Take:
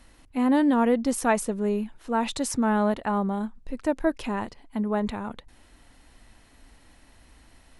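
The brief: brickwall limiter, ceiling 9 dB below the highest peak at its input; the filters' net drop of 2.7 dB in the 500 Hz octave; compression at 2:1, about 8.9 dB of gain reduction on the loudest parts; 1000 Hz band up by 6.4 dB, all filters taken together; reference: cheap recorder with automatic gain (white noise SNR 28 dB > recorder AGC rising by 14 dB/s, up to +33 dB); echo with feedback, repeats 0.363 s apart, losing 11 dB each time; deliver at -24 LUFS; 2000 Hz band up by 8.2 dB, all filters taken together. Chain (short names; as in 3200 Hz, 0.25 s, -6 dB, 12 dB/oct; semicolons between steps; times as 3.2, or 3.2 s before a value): bell 500 Hz -7 dB; bell 1000 Hz +8 dB; bell 2000 Hz +8 dB; compressor 2:1, threshold -28 dBFS; limiter -21 dBFS; feedback echo 0.363 s, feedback 28%, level -11 dB; white noise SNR 28 dB; recorder AGC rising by 14 dB/s, up to +33 dB; gain +8 dB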